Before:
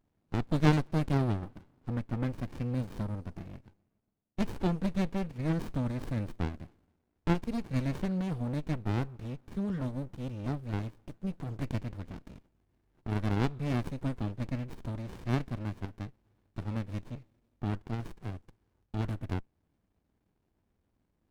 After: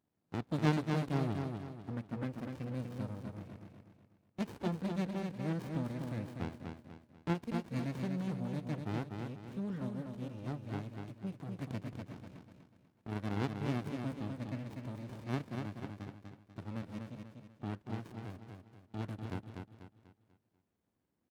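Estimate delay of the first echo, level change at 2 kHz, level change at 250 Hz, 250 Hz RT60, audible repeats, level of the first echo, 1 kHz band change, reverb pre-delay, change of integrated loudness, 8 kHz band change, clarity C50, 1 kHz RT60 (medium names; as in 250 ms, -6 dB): 245 ms, -4.0 dB, -4.5 dB, no reverb, 4, -5.0 dB, -4.0 dB, no reverb, -5.5 dB, no reading, no reverb, no reverb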